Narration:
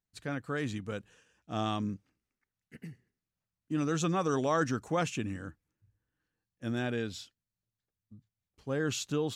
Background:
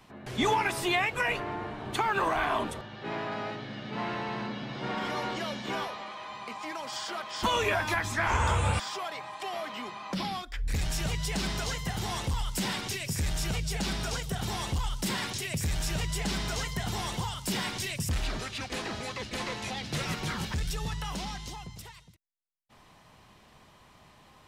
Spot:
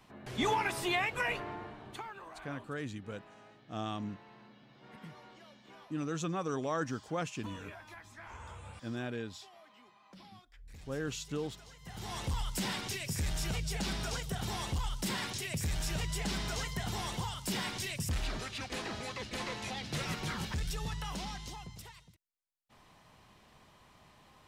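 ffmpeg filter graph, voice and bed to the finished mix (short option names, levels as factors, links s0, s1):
-filter_complex "[0:a]adelay=2200,volume=0.531[s0];[1:a]volume=4.73,afade=t=out:st=1.26:d=0.92:silence=0.133352,afade=t=in:st=11.79:d=0.52:silence=0.125893[s1];[s0][s1]amix=inputs=2:normalize=0"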